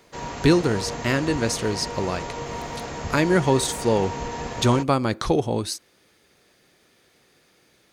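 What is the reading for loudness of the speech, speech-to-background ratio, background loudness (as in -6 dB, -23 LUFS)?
-23.0 LUFS, 9.0 dB, -32.0 LUFS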